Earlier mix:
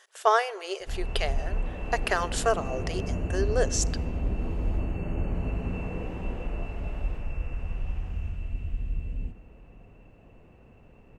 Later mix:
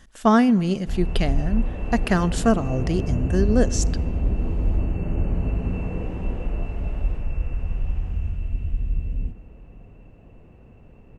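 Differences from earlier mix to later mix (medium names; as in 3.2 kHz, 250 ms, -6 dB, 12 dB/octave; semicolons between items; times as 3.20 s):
speech: remove brick-wall FIR high-pass 360 Hz; master: add bass shelf 440 Hz +6.5 dB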